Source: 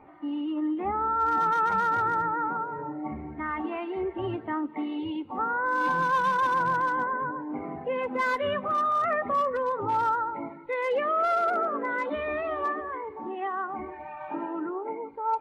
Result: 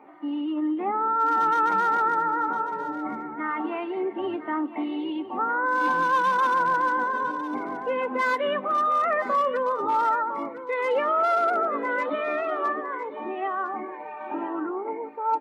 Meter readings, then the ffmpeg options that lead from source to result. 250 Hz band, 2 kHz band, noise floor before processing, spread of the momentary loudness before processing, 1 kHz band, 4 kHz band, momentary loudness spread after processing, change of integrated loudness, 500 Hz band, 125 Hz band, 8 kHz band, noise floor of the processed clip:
+2.5 dB, +2.5 dB, -43 dBFS, 11 LU, +2.5 dB, +2.5 dB, 10 LU, +2.5 dB, +2.5 dB, -8.0 dB, n/a, -38 dBFS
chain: -filter_complex "[0:a]highpass=f=210:w=0.5412,highpass=f=210:w=1.3066,asplit=2[a][b];[b]aecho=0:1:1006:0.224[c];[a][c]amix=inputs=2:normalize=0,volume=2.5dB"

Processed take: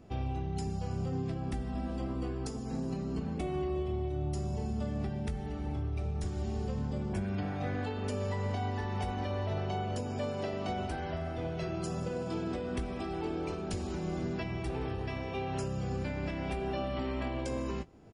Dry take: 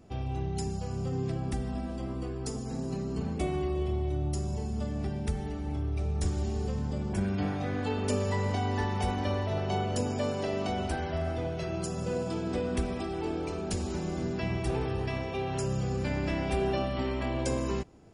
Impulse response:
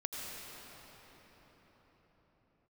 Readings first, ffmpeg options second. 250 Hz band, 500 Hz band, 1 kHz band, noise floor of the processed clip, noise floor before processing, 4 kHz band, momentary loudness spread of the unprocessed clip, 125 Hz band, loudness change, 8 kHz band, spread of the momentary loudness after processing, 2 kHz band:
-3.0 dB, -4.0 dB, -3.0 dB, -38 dBFS, -36 dBFS, -5.0 dB, 4 LU, -3.5 dB, -3.5 dB, -8.0 dB, 3 LU, -4.0 dB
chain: -filter_complex "[0:a]acrossover=split=4700[a][b];[a]acontrast=53[c];[c][b]amix=inputs=2:normalize=0,alimiter=limit=-20dB:level=0:latency=1:release=433,asplit=2[d][e];[e]adelay=19,volume=-12dB[f];[d][f]amix=inputs=2:normalize=0,volume=-5.5dB"

